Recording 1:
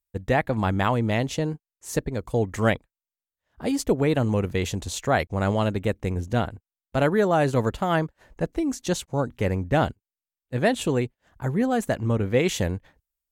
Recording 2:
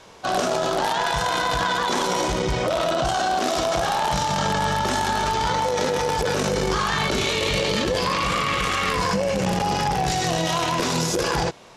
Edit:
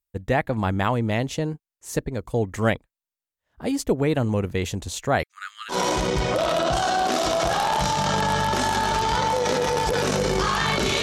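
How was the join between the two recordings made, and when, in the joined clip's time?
recording 1
0:05.23–0:05.76: Chebyshev high-pass with heavy ripple 1,200 Hz, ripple 3 dB
0:05.72: continue with recording 2 from 0:02.04, crossfade 0.08 s

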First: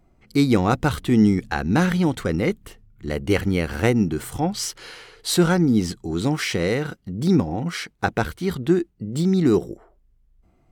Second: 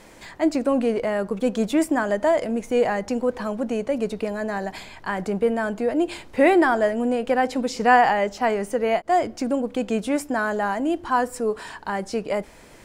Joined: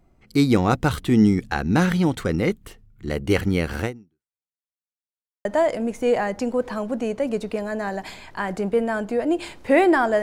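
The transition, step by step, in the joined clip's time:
first
0:03.81–0:04.49: fade out exponential
0:04.49–0:05.45: silence
0:05.45: continue with second from 0:02.14

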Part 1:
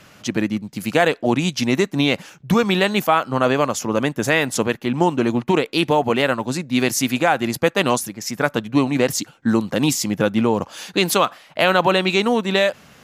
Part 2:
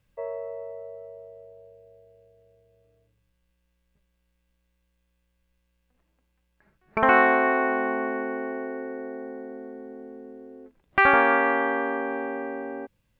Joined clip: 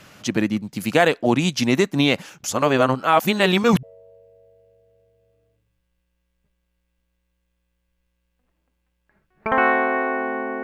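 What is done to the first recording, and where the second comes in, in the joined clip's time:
part 1
0:02.44–0:03.83: reverse
0:03.83: continue with part 2 from 0:01.34

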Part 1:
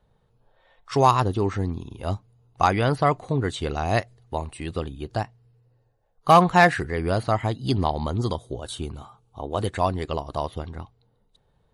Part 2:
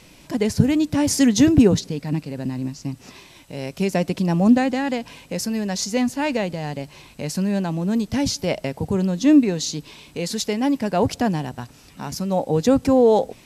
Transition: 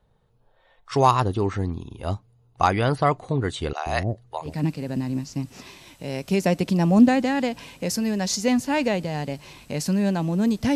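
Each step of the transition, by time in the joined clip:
part 1
0:03.73–0:04.57: multiband delay without the direct sound highs, lows 130 ms, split 520 Hz
0:04.49: continue with part 2 from 0:01.98, crossfade 0.16 s

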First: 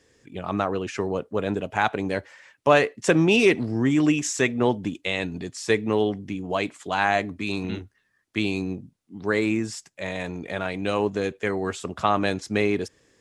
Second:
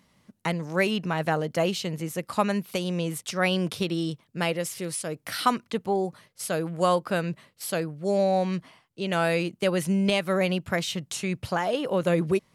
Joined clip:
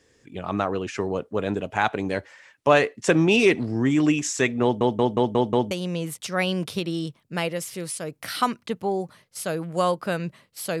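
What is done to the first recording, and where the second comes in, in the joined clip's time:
first
0:04.63: stutter in place 0.18 s, 6 plays
0:05.71: continue with second from 0:02.75

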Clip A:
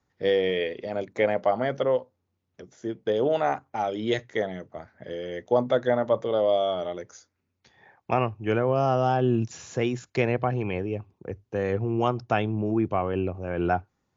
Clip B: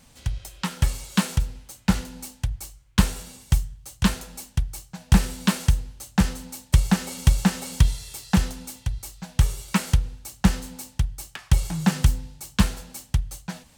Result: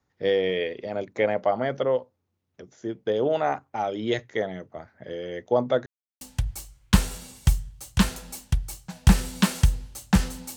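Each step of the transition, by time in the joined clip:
clip A
0:05.86–0:06.21: silence
0:06.21: continue with clip B from 0:02.26

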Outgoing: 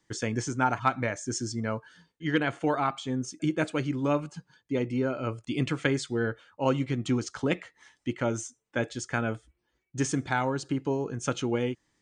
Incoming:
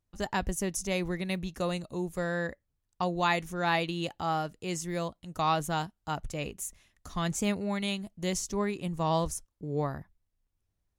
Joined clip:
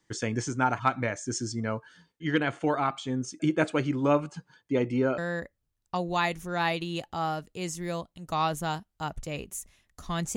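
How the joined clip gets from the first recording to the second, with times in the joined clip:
outgoing
0:03.33–0:05.18: parametric band 790 Hz +4 dB 2.7 octaves
0:05.18: continue with incoming from 0:02.25

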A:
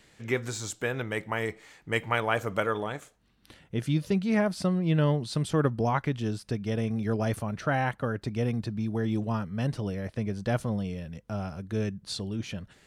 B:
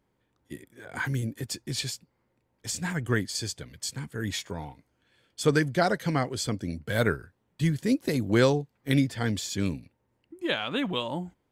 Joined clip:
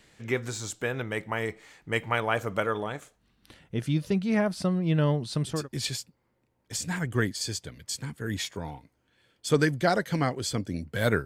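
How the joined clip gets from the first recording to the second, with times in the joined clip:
A
0:05.57: continue with B from 0:01.51, crossfade 0.24 s

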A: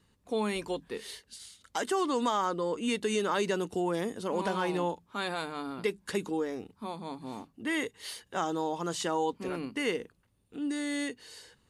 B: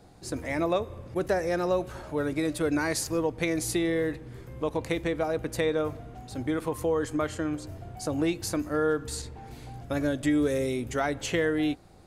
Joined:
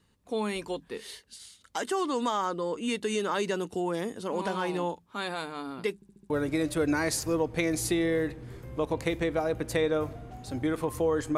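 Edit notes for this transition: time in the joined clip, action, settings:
A
0:05.95: stutter in place 0.07 s, 5 plays
0:06.30: continue with B from 0:02.14

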